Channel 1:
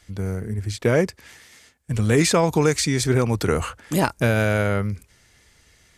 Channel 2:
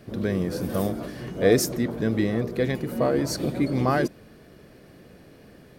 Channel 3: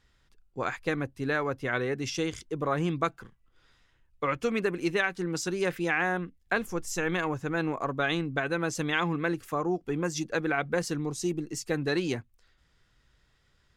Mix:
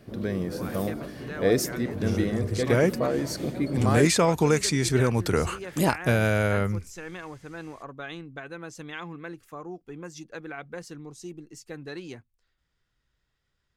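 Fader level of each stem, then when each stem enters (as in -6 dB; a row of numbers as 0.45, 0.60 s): -3.0, -3.5, -10.0 dB; 1.85, 0.00, 0.00 s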